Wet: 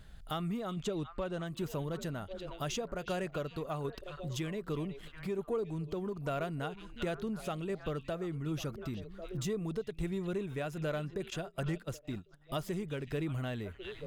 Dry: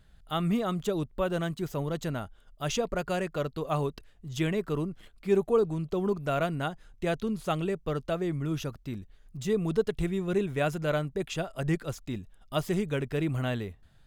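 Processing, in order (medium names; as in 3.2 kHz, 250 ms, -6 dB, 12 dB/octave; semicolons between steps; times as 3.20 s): 0.74–1.47 s: low-pass 8 kHz 12 dB/octave; on a send: repeats whose band climbs or falls 365 ms, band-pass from 3.3 kHz, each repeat -1.4 oct, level -10.5 dB; on the sum: compression 3:1, threshold -40 dBFS, peak gain reduction 15.5 dB; in parallel at -6.5 dB: saturation -37.5 dBFS, distortion -12 dB; on the sum: tremolo saw down 1.3 Hz, depth 35%; 11.30–12.54 s: gate -43 dBFS, range -19 dB; trim +2.5 dB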